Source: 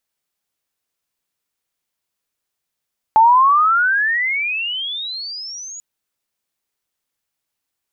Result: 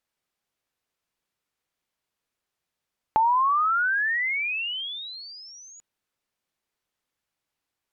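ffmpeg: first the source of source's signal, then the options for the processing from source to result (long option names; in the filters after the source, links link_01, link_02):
-f lavfi -i "aevalsrc='pow(10,(-6.5-23.5*t/2.64)/20)*sin(2*PI*863*2.64/(36*log(2)/12)*(exp(36*log(2)/12*t/2.64)-1))':duration=2.64:sample_rate=44100"
-filter_complex "[0:a]acrossover=split=2900[link_01][link_02];[link_02]acompressor=threshold=-42dB:ratio=4:attack=1:release=60[link_03];[link_01][link_03]amix=inputs=2:normalize=0,aemphasis=mode=reproduction:type=cd,acompressor=threshold=-28dB:ratio=2"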